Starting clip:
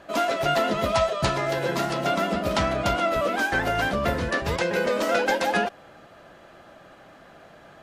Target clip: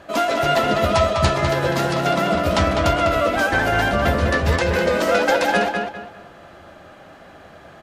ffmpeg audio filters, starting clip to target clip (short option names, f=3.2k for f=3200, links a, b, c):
-filter_complex "[0:a]equalizer=f=82:t=o:w=0.36:g=10,asplit=2[a][b];[b]adelay=201,lowpass=f=4.4k:p=1,volume=-4.5dB,asplit=2[c][d];[d]adelay=201,lowpass=f=4.4k:p=1,volume=0.31,asplit=2[e][f];[f]adelay=201,lowpass=f=4.4k:p=1,volume=0.31,asplit=2[g][h];[h]adelay=201,lowpass=f=4.4k:p=1,volume=0.31[i];[c][e][g][i]amix=inputs=4:normalize=0[j];[a][j]amix=inputs=2:normalize=0,volume=4dB"